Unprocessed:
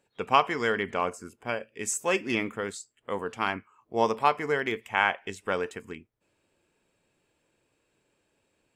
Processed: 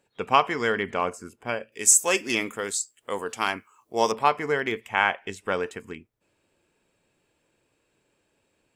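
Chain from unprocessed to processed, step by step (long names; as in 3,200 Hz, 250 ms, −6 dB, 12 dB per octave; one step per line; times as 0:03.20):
0:01.72–0:04.12: bass and treble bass −6 dB, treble +13 dB
level +2 dB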